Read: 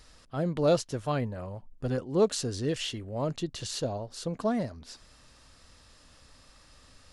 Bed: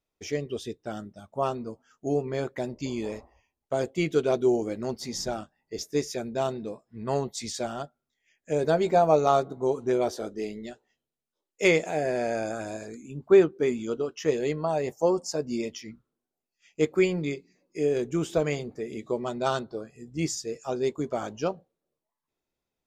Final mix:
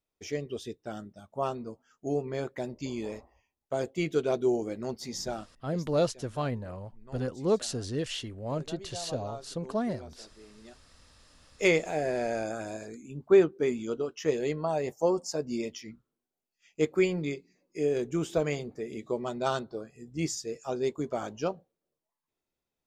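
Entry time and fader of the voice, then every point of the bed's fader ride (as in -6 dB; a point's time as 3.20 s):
5.30 s, -2.0 dB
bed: 5.50 s -3.5 dB
6.05 s -21 dB
10.45 s -21 dB
10.89 s -2.5 dB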